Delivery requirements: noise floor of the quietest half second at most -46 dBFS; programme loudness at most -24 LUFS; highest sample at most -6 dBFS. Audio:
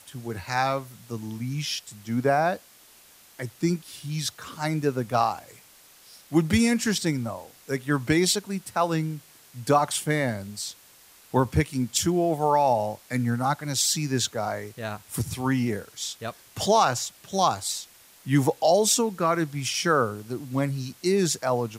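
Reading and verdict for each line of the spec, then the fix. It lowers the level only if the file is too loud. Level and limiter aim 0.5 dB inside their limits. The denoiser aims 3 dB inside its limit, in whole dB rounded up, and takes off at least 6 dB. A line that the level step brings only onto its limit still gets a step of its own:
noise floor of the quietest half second -54 dBFS: OK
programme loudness -25.5 LUFS: OK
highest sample -9.0 dBFS: OK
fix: none

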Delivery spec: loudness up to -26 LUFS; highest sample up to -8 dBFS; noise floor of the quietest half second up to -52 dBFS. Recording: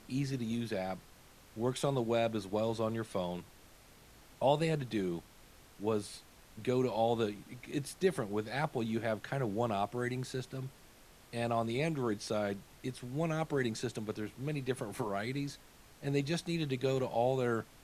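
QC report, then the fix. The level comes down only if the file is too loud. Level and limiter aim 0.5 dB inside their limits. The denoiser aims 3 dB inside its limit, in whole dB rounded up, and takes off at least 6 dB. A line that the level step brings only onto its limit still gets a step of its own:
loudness -35.5 LUFS: OK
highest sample -16.0 dBFS: OK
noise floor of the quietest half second -59 dBFS: OK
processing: none

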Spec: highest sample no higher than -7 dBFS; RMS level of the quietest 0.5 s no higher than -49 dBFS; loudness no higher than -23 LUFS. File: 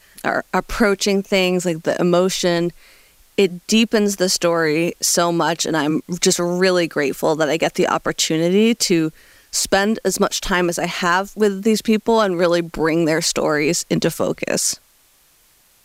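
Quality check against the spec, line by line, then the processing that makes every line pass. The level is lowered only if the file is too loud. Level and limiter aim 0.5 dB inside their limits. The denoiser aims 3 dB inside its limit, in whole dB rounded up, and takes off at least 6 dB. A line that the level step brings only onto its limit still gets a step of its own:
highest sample -4.0 dBFS: fail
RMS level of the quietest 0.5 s -55 dBFS: OK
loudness -18.0 LUFS: fail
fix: gain -5.5 dB

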